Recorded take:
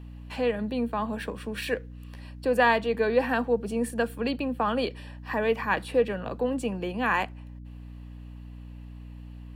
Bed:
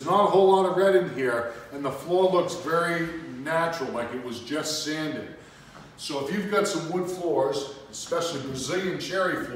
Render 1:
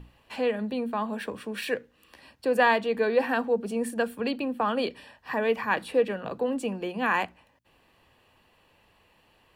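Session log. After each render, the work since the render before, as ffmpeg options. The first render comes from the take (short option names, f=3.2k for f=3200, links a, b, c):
-af "bandreject=f=60:t=h:w=6,bandreject=f=120:t=h:w=6,bandreject=f=180:t=h:w=6,bandreject=f=240:t=h:w=6,bandreject=f=300:t=h:w=6"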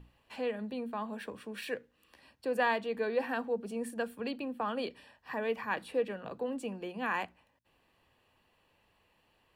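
-af "volume=-8dB"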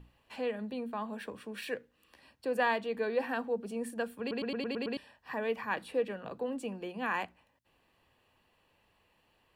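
-filter_complex "[0:a]asplit=8[a][b][c][d][e][f][g][h];[a]atrim=end=4.312[i];[b]atrim=start=4.198:end=4.312[j];[c]atrim=start=4.198:end=4.312[k];[d]atrim=start=4.198:end=4.312[l];[e]atrim=start=4.198:end=4.312[m];[f]atrim=start=4.198:end=4.312[n];[g]atrim=start=4.198:end=4.312[o];[h]atrim=start=4.968[p];[i][j]acrossfade=d=0.004:c1=hsin:c2=hsin[q];[q][k]acrossfade=d=0.004:c1=hsin:c2=hsin[r];[r][l]acrossfade=d=0.004:c1=hsin:c2=hsin[s];[s][m]acrossfade=d=0.004:c1=hsin:c2=hsin[t];[t][n]acrossfade=d=0.004:c1=hsin:c2=hsin[u];[u][o]acrossfade=d=0.004:c1=hsin:c2=hsin[v];[v][p]acrossfade=d=0.004:c1=hsin:c2=hsin"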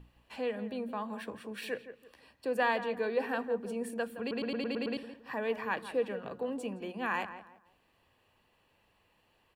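-filter_complex "[0:a]asplit=2[a][b];[b]adelay=167,lowpass=f=1.8k:p=1,volume=-11dB,asplit=2[c][d];[d]adelay=167,lowpass=f=1.8k:p=1,volume=0.32,asplit=2[e][f];[f]adelay=167,lowpass=f=1.8k:p=1,volume=0.32[g];[a][c][e][g]amix=inputs=4:normalize=0"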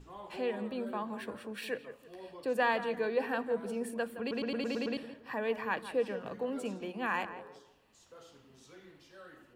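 -filter_complex "[1:a]volume=-27.5dB[a];[0:a][a]amix=inputs=2:normalize=0"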